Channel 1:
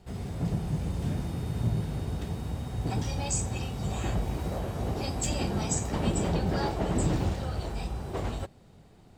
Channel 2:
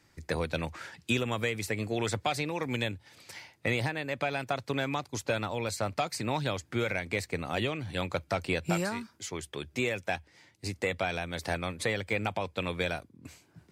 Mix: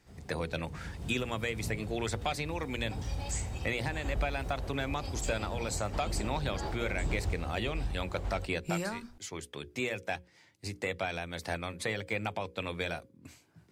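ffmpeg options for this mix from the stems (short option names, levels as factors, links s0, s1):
-filter_complex "[0:a]asubboost=boost=5:cutoff=66,volume=0.447,afade=t=in:st=0.66:d=0.58:silence=0.421697[s0];[1:a]volume=0.708,asplit=2[s1][s2];[s2]apad=whole_len=404807[s3];[s0][s3]sidechaincompress=threshold=0.0178:ratio=8:attack=21:release=221[s4];[s4][s1]amix=inputs=2:normalize=0,bandreject=f=60:t=h:w=6,bandreject=f=120:t=h:w=6,bandreject=f=180:t=h:w=6,bandreject=f=240:t=h:w=6,bandreject=f=300:t=h:w=6,bandreject=f=360:t=h:w=6,bandreject=f=420:t=h:w=6,bandreject=f=480:t=h:w=6,bandreject=f=540:t=h:w=6"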